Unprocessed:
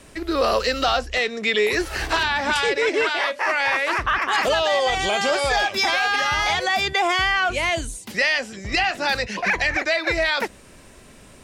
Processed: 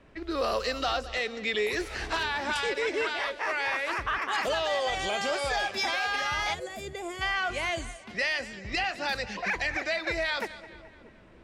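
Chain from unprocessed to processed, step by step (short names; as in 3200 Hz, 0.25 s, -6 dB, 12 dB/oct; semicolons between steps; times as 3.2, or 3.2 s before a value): split-band echo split 470 Hz, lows 0.625 s, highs 0.214 s, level -16 dB; low-pass opened by the level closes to 2300 Hz, open at -18 dBFS; spectral gain 6.54–7.22, 680–6600 Hz -13 dB; gain -8.5 dB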